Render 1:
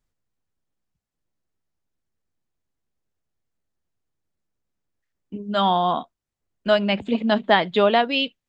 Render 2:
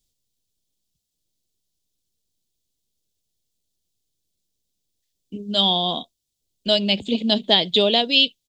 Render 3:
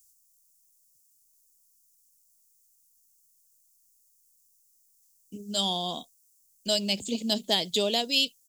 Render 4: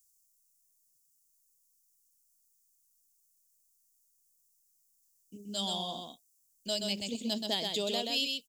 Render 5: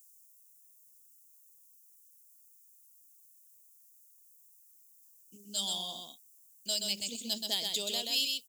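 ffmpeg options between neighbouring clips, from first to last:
-af "firequalizer=gain_entry='entry(460,0);entry(1300,-16);entry(3400,13)':delay=0.05:min_phase=1"
-af "aexciter=amount=7.3:drive=9:freq=5400,volume=0.376"
-af "aecho=1:1:128:0.631,volume=0.422"
-af "crystalizer=i=5:c=0,volume=0.376"

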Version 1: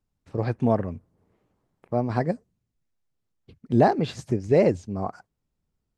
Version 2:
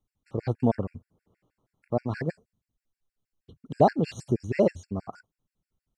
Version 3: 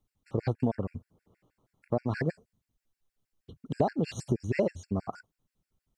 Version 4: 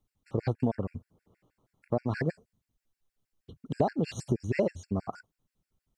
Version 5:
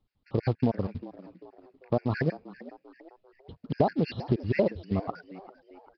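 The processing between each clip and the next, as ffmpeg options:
-af "afftfilt=real='re*gt(sin(2*PI*6.3*pts/sr)*(1-2*mod(floor(b*sr/1024/1400),2)),0)':imag='im*gt(sin(2*PI*6.3*pts/sr)*(1-2*mod(floor(b*sr/1024/1400),2)),0)':win_size=1024:overlap=0.75"
-af "acompressor=threshold=0.0501:ratio=6,volume=1.33"
-af anull
-filter_complex "[0:a]asplit=5[s0][s1][s2][s3][s4];[s1]adelay=394,afreqshift=87,volume=0.133[s5];[s2]adelay=788,afreqshift=174,volume=0.0589[s6];[s3]adelay=1182,afreqshift=261,volume=0.0257[s7];[s4]adelay=1576,afreqshift=348,volume=0.0114[s8];[s0][s5][s6][s7][s8]amix=inputs=5:normalize=0,acrusher=bits=6:mode=log:mix=0:aa=0.000001,aresample=11025,aresample=44100,volume=1.33"

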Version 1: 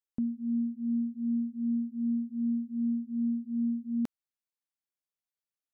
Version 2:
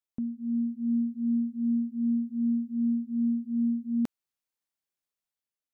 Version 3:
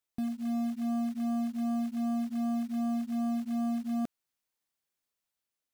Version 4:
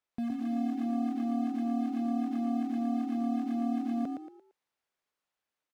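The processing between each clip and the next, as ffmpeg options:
-af "dynaudnorm=f=120:g=9:m=1.68,volume=0.841"
-af "asoftclip=type=tanh:threshold=0.0251,acrusher=bits=5:mode=log:mix=0:aa=0.000001,volume=1.41"
-filter_complex "[0:a]asplit=2[s0][s1];[s1]highpass=f=720:p=1,volume=2.82,asoftclip=type=tanh:threshold=0.0376[s2];[s0][s2]amix=inputs=2:normalize=0,lowpass=f=1300:p=1,volume=0.501,asplit=5[s3][s4][s5][s6][s7];[s4]adelay=114,afreqshift=38,volume=0.596[s8];[s5]adelay=228,afreqshift=76,volume=0.197[s9];[s6]adelay=342,afreqshift=114,volume=0.0646[s10];[s7]adelay=456,afreqshift=152,volume=0.0214[s11];[s3][s8][s9][s10][s11]amix=inputs=5:normalize=0,volume=1.33"

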